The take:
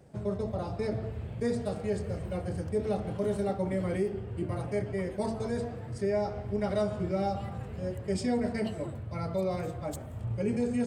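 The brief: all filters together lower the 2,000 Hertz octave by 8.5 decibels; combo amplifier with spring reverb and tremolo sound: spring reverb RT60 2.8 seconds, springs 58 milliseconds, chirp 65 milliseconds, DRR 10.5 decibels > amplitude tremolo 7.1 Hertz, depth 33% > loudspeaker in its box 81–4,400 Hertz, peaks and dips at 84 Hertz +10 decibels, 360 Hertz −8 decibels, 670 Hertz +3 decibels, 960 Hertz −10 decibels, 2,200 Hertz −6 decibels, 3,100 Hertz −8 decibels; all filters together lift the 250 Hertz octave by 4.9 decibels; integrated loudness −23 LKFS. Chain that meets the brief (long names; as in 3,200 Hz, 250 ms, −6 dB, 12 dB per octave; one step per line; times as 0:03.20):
parametric band 250 Hz +7 dB
parametric band 2,000 Hz −6.5 dB
spring reverb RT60 2.8 s, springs 58 ms, chirp 65 ms, DRR 10.5 dB
amplitude tremolo 7.1 Hz, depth 33%
loudspeaker in its box 81–4,400 Hz, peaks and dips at 84 Hz +10 dB, 360 Hz −8 dB, 670 Hz +3 dB, 960 Hz −10 dB, 2,200 Hz −6 dB, 3,100 Hz −8 dB
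level +8.5 dB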